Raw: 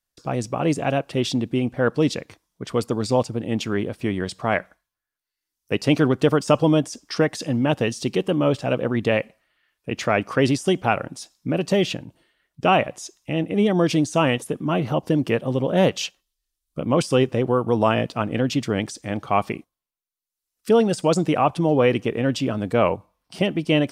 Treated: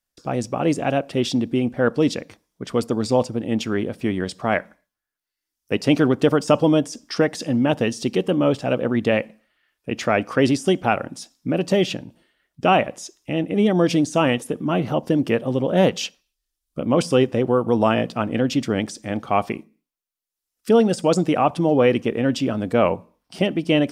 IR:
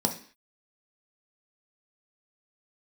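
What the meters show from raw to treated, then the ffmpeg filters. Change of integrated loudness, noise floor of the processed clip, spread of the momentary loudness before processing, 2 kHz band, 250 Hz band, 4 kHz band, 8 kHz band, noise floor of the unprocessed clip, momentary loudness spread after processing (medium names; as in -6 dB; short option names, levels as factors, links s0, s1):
+1.0 dB, -84 dBFS, 10 LU, +0.5 dB, +2.0 dB, 0.0 dB, 0.0 dB, -85 dBFS, 10 LU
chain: -filter_complex "[0:a]asplit=2[s0][s1];[1:a]atrim=start_sample=2205,lowpass=5700[s2];[s1][s2]afir=irnorm=-1:irlink=0,volume=0.0501[s3];[s0][s3]amix=inputs=2:normalize=0"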